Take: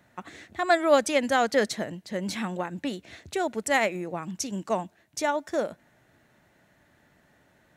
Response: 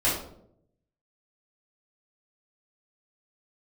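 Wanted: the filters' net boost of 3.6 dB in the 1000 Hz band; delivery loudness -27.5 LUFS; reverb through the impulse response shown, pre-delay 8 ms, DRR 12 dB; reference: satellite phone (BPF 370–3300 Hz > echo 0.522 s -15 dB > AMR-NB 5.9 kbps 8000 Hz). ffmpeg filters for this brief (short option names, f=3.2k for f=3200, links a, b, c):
-filter_complex "[0:a]equalizer=f=1k:t=o:g=5.5,asplit=2[a][b];[1:a]atrim=start_sample=2205,adelay=8[c];[b][c]afir=irnorm=-1:irlink=0,volume=-24.5dB[d];[a][d]amix=inputs=2:normalize=0,highpass=370,lowpass=3.3k,aecho=1:1:522:0.178,volume=-1dB" -ar 8000 -c:a libopencore_amrnb -b:a 5900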